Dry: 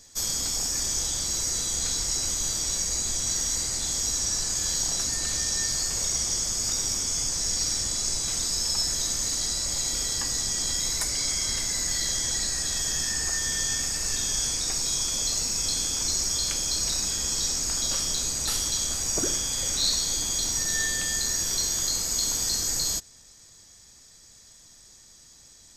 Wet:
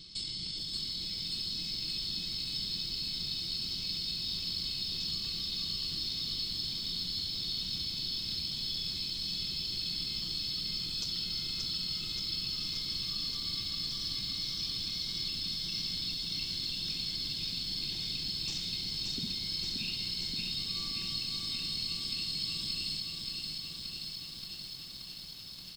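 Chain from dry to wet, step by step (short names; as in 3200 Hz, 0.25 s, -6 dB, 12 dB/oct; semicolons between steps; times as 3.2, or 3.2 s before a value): graphic EQ 125/250/500/1000/2000/4000/8000 Hz +4/+12/+6/-11/-5/-3/+9 dB; compressor 4:1, threshold -35 dBFS, peak gain reduction 16.5 dB; pitch shift -7.5 st; lo-fi delay 0.577 s, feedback 80%, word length 9-bit, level -4 dB; gain -3 dB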